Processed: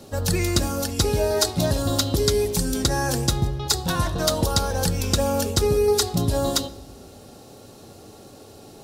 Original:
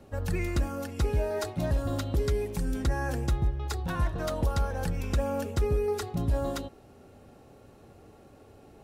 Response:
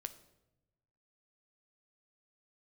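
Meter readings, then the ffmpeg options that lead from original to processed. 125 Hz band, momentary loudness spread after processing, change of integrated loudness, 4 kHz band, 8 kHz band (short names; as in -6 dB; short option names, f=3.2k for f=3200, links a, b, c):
+5.5 dB, 4 LU, +8.0 dB, +18.5 dB, +19.0 dB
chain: -filter_complex "[0:a]highshelf=f=3.1k:t=q:w=1.5:g=9,asplit=2[a][b];[b]highpass=f=56:w=0.5412,highpass=f=56:w=1.3066[c];[1:a]atrim=start_sample=2205,asetrate=36162,aresample=44100[d];[c][d]afir=irnorm=-1:irlink=0,volume=1dB[e];[a][e]amix=inputs=2:normalize=0,volume=3.5dB"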